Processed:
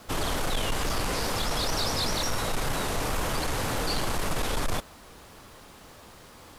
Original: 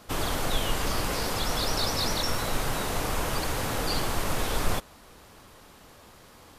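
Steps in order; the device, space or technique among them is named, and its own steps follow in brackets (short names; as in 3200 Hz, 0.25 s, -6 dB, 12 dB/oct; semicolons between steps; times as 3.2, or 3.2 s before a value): compact cassette (soft clip -24 dBFS, distortion -13 dB; LPF 13000 Hz 12 dB/oct; wow and flutter; white noise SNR 36 dB); gain +2.5 dB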